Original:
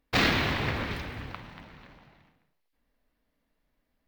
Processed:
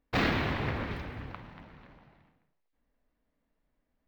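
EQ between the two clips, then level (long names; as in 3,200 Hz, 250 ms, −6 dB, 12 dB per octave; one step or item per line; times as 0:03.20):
high-shelf EQ 2,900 Hz −11.5 dB
−1.5 dB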